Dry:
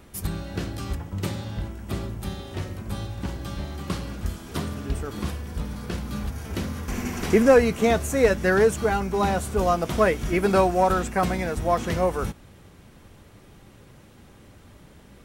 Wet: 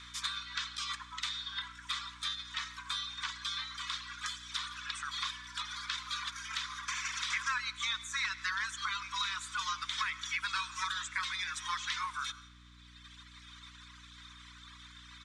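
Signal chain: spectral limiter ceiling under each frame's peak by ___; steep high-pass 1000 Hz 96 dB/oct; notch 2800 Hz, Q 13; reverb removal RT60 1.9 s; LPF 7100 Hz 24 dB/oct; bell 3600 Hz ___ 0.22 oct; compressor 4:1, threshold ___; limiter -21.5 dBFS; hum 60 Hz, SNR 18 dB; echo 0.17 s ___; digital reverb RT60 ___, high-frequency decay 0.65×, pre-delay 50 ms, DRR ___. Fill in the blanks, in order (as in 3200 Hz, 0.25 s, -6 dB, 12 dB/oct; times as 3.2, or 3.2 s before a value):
19 dB, +11.5 dB, -34 dBFS, -23 dB, 0.66 s, 16 dB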